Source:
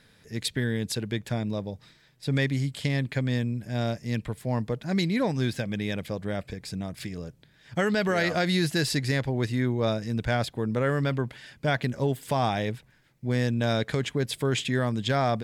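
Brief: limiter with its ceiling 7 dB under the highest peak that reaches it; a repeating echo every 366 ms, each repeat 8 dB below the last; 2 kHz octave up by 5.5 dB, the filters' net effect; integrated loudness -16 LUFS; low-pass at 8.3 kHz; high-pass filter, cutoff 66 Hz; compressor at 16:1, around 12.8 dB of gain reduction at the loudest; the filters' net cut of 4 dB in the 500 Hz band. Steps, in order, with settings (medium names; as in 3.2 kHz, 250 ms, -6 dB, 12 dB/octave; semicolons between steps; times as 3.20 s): high-pass 66 Hz; low-pass 8.3 kHz; peaking EQ 500 Hz -5.5 dB; peaking EQ 2 kHz +7 dB; compression 16:1, threshold -32 dBFS; peak limiter -27.5 dBFS; feedback delay 366 ms, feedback 40%, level -8 dB; trim +22 dB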